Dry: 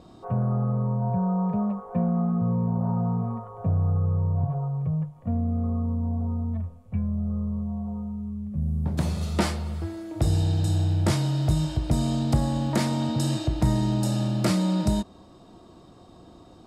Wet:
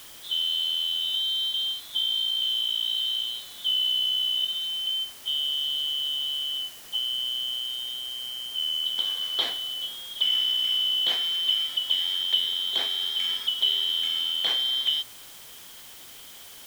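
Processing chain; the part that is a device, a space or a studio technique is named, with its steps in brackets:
split-band scrambled radio (band-splitting scrambler in four parts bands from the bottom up 2413; band-pass filter 360–3,200 Hz; white noise bed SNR 18 dB)

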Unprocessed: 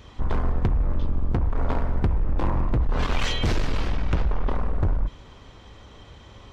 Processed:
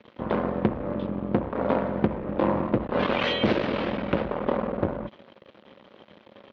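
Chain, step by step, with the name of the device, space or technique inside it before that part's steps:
blown loudspeaker (dead-zone distortion −44.5 dBFS; loudspeaker in its box 190–3,600 Hz, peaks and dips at 210 Hz +8 dB, 340 Hz +4 dB, 550 Hz +10 dB)
level +3 dB

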